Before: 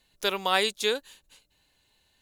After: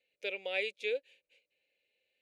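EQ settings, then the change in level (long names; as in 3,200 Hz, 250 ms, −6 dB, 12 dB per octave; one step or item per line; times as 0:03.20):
pair of resonant band-passes 1,100 Hz, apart 2.2 octaves
0.0 dB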